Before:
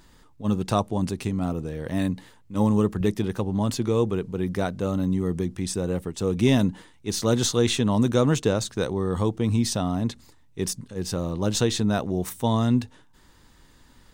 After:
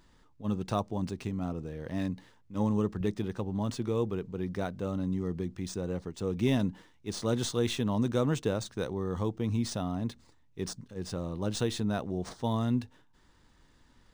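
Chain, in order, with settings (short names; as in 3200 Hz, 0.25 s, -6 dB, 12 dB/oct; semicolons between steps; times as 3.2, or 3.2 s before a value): decimation joined by straight lines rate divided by 3×; gain -7.5 dB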